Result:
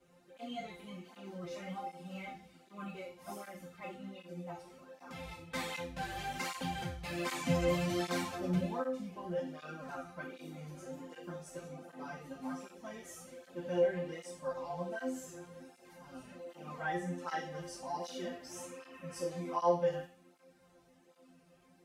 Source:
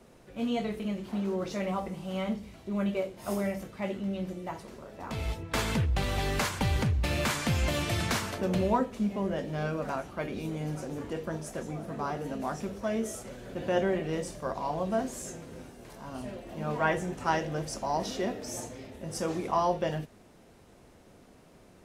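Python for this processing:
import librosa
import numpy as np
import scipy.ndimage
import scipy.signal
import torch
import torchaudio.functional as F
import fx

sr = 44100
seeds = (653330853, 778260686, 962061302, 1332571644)

y = fx.low_shelf(x, sr, hz=480.0, db=6.5, at=(7.25, 8.66))
y = fx.spec_repair(y, sr, seeds[0], start_s=18.53, length_s=0.75, low_hz=910.0, high_hz=3000.0, source='after')
y = fx.resonator_bank(y, sr, root=53, chord='fifth', decay_s=0.45)
y = fx.flanger_cancel(y, sr, hz=1.3, depth_ms=4.8)
y = F.gain(torch.from_numpy(y), 11.0).numpy()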